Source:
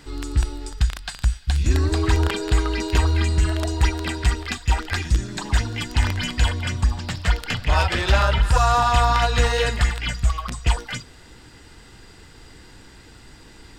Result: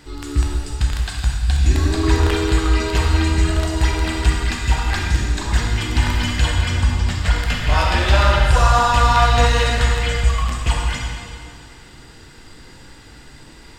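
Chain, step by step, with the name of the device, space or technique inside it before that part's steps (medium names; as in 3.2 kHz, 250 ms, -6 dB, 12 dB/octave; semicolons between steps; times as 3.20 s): stairwell (reverberation RT60 2.2 s, pre-delay 12 ms, DRR -1.5 dB)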